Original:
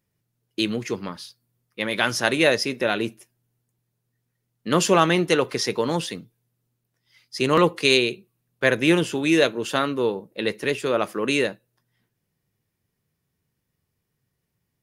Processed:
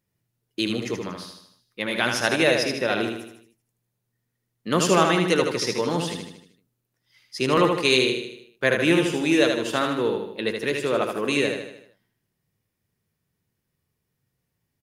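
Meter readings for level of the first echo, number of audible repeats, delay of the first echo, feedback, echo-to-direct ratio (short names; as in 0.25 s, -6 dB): -5.0 dB, 5, 77 ms, 50%, -4.0 dB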